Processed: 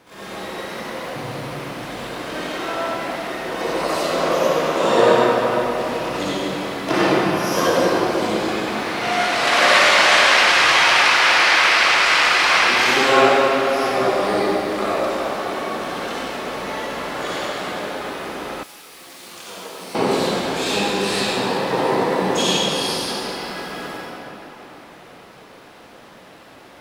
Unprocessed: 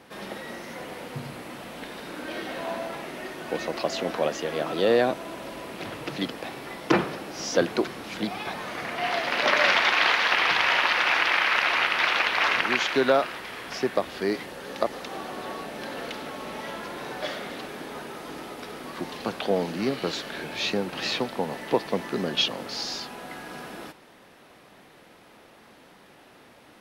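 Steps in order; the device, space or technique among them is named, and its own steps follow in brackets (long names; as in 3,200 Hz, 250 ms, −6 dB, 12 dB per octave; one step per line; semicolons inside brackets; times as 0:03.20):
shimmer-style reverb (pitch-shifted copies added +12 semitones −6 dB; convolution reverb RT60 3.9 s, pre-delay 50 ms, DRR −9.5 dB)
0:18.63–0:19.95: first-order pre-emphasis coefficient 0.9
level −2.5 dB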